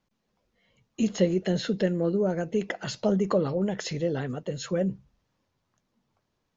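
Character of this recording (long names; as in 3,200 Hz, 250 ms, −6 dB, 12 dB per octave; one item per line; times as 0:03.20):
background noise floor −78 dBFS
spectral slope −6.5 dB per octave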